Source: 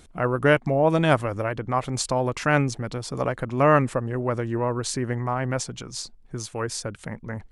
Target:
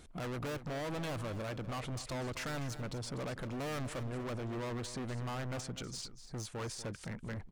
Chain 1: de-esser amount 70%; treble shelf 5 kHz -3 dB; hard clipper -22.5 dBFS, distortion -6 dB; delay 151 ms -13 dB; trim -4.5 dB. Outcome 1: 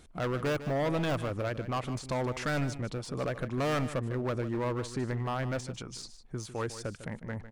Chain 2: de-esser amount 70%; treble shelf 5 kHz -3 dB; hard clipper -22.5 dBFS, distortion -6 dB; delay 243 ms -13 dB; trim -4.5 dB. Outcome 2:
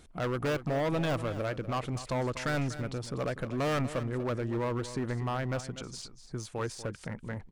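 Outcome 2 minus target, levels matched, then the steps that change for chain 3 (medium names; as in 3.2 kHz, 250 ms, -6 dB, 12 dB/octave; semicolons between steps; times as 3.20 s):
hard clipper: distortion -5 dB
change: hard clipper -33 dBFS, distortion -1 dB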